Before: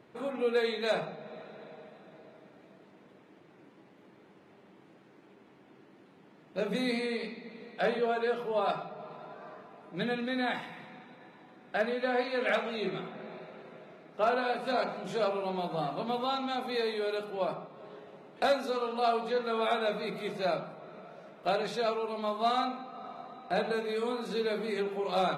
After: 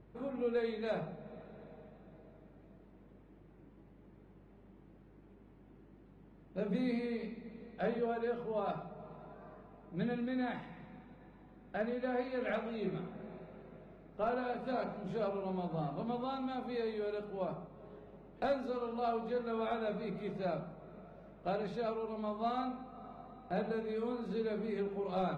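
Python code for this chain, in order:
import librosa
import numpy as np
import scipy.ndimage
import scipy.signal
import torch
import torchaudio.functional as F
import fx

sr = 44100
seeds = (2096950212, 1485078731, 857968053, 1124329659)

y = fx.riaa(x, sr, side='playback')
y = fx.add_hum(y, sr, base_hz=50, snr_db=25)
y = y * 10.0 ** (-8.5 / 20.0)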